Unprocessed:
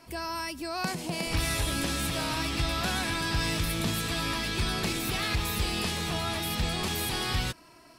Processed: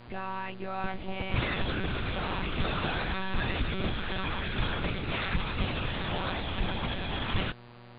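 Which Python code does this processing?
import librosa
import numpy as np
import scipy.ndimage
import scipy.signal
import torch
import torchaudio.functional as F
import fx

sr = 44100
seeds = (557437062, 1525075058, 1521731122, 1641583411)

y = fx.air_absorb(x, sr, metres=96.0)
y = fx.lpc_monotone(y, sr, seeds[0], pitch_hz=190.0, order=10)
y = fx.dmg_buzz(y, sr, base_hz=120.0, harmonics=40, level_db=-51.0, tilt_db=-5, odd_only=False)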